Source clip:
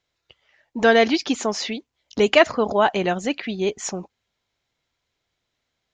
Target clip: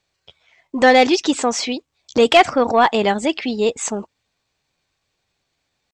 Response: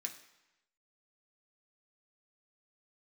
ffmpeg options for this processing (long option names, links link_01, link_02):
-af "acontrast=50,asetrate=49501,aresample=44100,atempo=0.890899,volume=-1dB"